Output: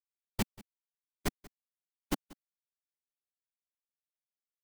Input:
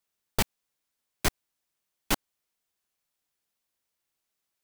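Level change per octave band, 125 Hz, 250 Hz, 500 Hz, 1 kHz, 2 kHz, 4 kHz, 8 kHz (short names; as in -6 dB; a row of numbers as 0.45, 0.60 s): -5.0, -1.5, -6.5, -9.0, -10.5, -11.0, -11.0 dB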